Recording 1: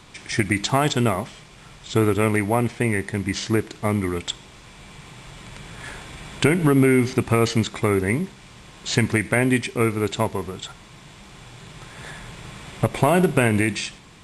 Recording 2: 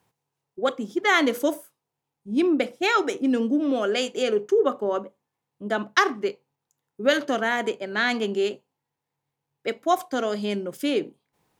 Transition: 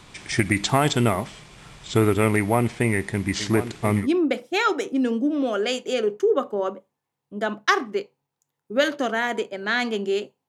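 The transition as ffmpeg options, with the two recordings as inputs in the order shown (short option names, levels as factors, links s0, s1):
-filter_complex "[0:a]asplit=3[s0][s1][s2];[s0]afade=t=out:st=3.39:d=0.02[s3];[s1]aecho=1:1:1033:0.266,afade=t=in:st=3.39:d=0.02,afade=t=out:st=4.08:d=0.02[s4];[s2]afade=t=in:st=4.08:d=0.02[s5];[s3][s4][s5]amix=inputs=3:normalize=0,apad=whole_dur=10.48,atrim=end=10.48,atrim=end=4.08,asetpts=PTS-STARTPTS[s6];[1:a]atrim=start=2.27:end=8.77,asetpts=PTS-STARTPTS[s7];[s6][s7]acrossfade=d=0.1:c1=tri:c2=tri"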